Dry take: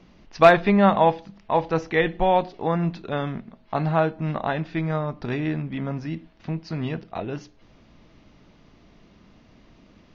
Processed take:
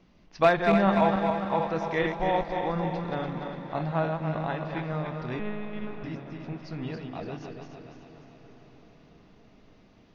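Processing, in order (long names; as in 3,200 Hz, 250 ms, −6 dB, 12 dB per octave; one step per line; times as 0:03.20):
feedback delay that plays each chunk backwards 145 ms, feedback 71%, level −5 dB
0:05.39–0:06.04: one-pitch LPC vocoder at 8 kHz 210 Hz
feedback delay with all-pass diffusion 571 ms, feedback 63%, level −15 dB
level −7.5 dB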